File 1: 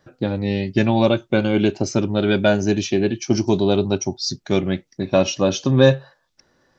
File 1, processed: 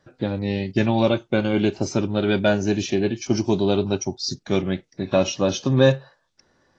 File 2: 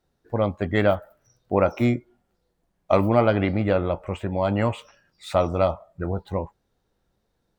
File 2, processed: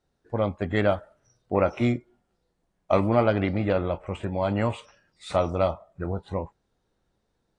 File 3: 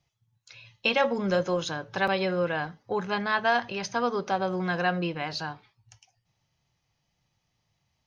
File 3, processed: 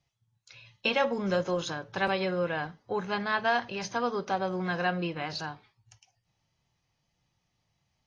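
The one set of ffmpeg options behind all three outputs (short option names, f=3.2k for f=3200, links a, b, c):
-af "volume=-2.5dB" -ar 22050 -c:a aac -b:a 32k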